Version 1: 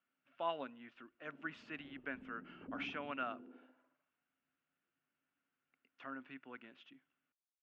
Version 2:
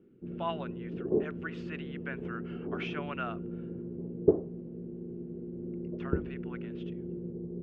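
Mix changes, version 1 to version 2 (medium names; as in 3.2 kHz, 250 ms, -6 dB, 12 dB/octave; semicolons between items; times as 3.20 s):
speech +4.0 dB; first sound: unmuted; master: add peaking EQ 260 Hz -12.5 dB 0.23 oct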